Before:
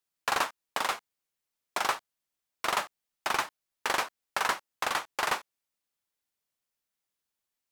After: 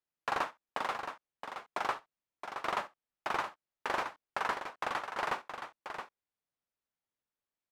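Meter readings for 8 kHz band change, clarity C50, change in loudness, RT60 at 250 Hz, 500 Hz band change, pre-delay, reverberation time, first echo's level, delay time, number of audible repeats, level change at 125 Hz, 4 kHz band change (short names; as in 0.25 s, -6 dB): -15.0 dB, none, -6.0 dB, none, -2.5 dB, none, none, -20.0 dB, 66 ms, 2, -2.0 dB, -10.0 dB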